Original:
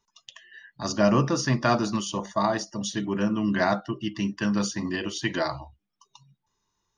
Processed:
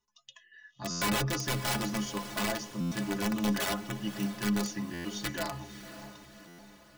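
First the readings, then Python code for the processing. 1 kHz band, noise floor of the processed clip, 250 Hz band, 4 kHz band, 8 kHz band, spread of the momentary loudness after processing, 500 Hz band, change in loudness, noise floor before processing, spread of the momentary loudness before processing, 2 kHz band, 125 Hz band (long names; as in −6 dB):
−8.0 dB, −66 dBFS, −6.5 dB, −2.0 dB, −1.5 dB, 17 LU, −10.0 dB, −6.0 dB, −80 dBFS, 8 LU, −4.0 dB, −6.5 dB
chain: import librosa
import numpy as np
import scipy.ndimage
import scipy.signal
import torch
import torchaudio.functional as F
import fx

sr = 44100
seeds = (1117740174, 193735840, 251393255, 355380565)

y = (np.mod(10.0 ** (17.5 / 20.0) * x + 1.0, 2.0) - 1.0) / 10.0 ** (17.5 / 20.0)
y = fx.stiff_resonator(y, sr, f0_hz=62.0, decay_s=0.27, stiffness=0.03)
y = fx.echo_diffused(y, sr, ms=568, feedback_pct=51, wet_db=-12.0)
y = fx.buffer_glitch(y, sr, at_s=(0.9, 2.8, 4.93, 6.47), block=512, repeats=9)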